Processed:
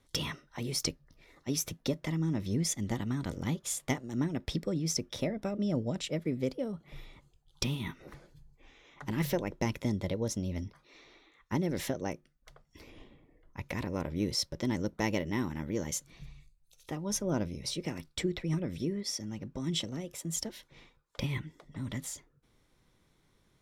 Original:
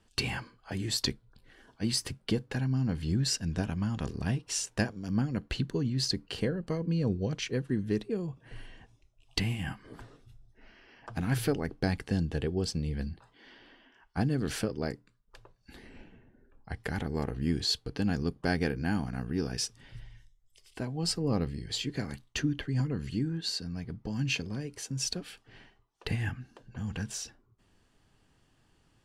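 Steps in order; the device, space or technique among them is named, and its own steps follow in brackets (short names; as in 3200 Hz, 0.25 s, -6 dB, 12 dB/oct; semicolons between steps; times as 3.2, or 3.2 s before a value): nightcore (varispeed +23%); gain -2 dB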